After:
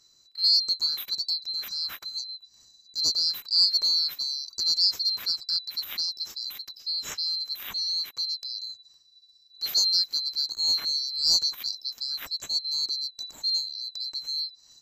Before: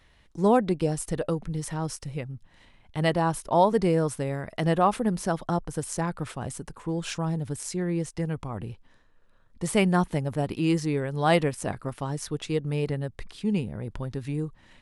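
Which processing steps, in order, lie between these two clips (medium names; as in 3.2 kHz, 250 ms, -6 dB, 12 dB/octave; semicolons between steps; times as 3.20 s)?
split-band scrambler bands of 4 kHz; trim -1.5 dB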